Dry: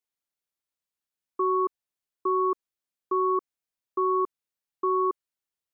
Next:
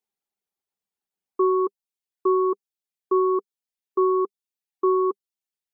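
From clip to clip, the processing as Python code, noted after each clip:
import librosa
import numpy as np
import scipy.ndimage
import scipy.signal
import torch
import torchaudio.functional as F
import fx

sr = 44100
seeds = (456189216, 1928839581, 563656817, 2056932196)

y = fx.graphic_eq_31(x, sr, hz=(200, 400, 800), db=(11, 10, 10))
y = fx.dereverb_blind(y, sr, rt60_s=0.83)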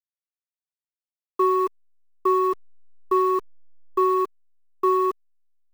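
y = fx.delta_hold(x, sr, step_db=-36.0)
y = fx.peak_eq(y, sr, hz=1100.0, db=8.0, octaves=1.9)
y = y * librosa.db_to_amplitude(-3.5)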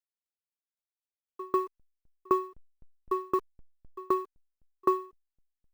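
y = fx.tremolo_decay(x, sr, direction='decaying', hz=3.9, depth_db=37)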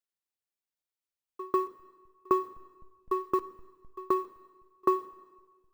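y = fx.rev_plate(x, sr, seeds[0], rt60_s=1.4, hf_ratio=0.95, predelay_ms=0, drr_db=15.0)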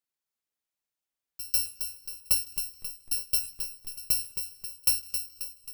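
y = fx.bit_reversed(x, sr, seeds[1], block=128)
y = fx.echo_feedback(y, sr, ms=268, feedback_pct=52, wet_db=-8)
y = y * librosa.db_to_amplitude(1.0)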